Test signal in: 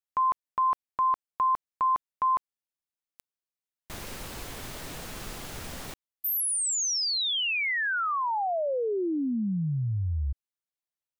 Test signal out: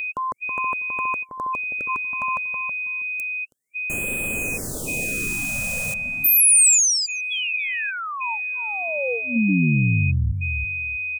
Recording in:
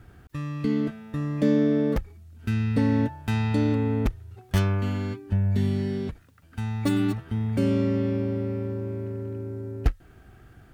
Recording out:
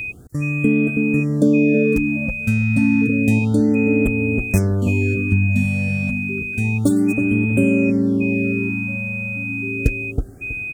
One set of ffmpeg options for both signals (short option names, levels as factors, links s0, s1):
-filter_complex "[0:a]equalizer=f=125:t=o:w=1:g=4,equalizer=f=250:t=o:w=1:g=6,equalizer=f=500:t=o:w=1:g=7,equalizer=f=1000:t=o:w=1:g=-6,equalizer=f=2000:t=o:w=1:g=-5,equalizer=f=4000:t=o:w=1:g=-6,equalizer=f=8000:t=o:w=1:g=11,asplit=2[s0][s1];[s1]adelay=323,lowpass=f=810:p=1,volume=0.562,asplit=2[s2][s3];[s3]adelay=323,lowpass=f=810:p=1,volume=0.22,asplit=2[s4][s5];[s5]adelay=323,lowpass=f=810:p=1,volume=0.22[s6];[s0][s2][s4][s6]amix=inputs=4:normalize=0,acompressor=threshold=0.0794:ratio=2:attack=60:release=272:knee=1:detection=peak,aeval=exprs='val(0)+0.0355*sin(2*PI*2500*n/s)':c=same,highshelf=f=9600:g=7.5,afftfilt=real='re*(1-between(b*sr/1024,330*pow(5200/330,0.5+0.5*sin(2*PI*0.3*pts/sr))/1.41,330*pow(5200/330,0.5+0.5*sin(2*PI*0.3*pts/sr))*1.41))':imag='im*(1-between(b*sr/1024,330*pow(5200/330,0.5+0.5*sin(2*PI*0.3*pts/sr))/1.41,330*pow(5200/330,0.5+0.5*sin(2*PI*0.3*pts/sr))*1.41))':win_size=1024:overlap=0.75,volume=1.58"